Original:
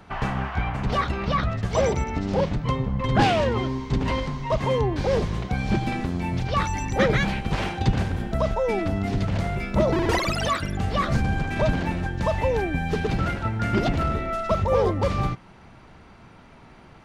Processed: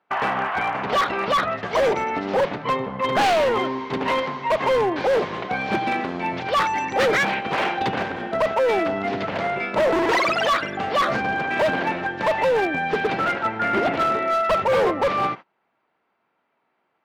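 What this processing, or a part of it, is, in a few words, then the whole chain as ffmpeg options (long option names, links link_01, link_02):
walkie-talkie: -filter_complex "[0:a]highpass=420,lowpass=2900,asoftclip=type=hard:threshold=-24.5dB,agate=range=-27dB:threshold=-42dB:ratio=16:detection=peak,asettb=1/sr,asplit=3[link_01][link_02][link_03];[link_01]atrim=end=13.394[link_04];[link_02]atrim=start=13.39:end=13.91,asetpts=PTS-STARTPTS,afade=type=in:duration=0.004:curve=qsin,afade=type=out:start_time=0.516:duration=0.004:curve=qsin,acrossover=split=3000[link_05][link_06];[link_06]acompressor=threshold=-50dB:ratio=4:attack=1:release=60[link_07];[link_05][link_07]amix=inputs=2:normalize=0[link_08];[link_03]atrim=start=13.906[link_09];[link_04][link_08]acrossfade=duration=0.004:curve1=hsin:curve2=qsin[link_10];[link_10][link_09]acrossfade=duration=0.004:curve1=qsin:curve2=hsin,volume=8.5dB"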